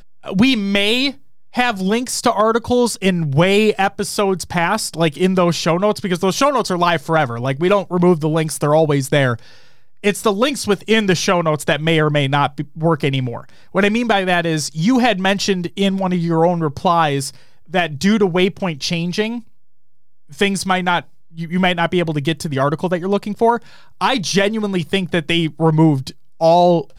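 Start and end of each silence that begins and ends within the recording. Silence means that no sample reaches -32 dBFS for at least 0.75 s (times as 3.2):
19.41–20.31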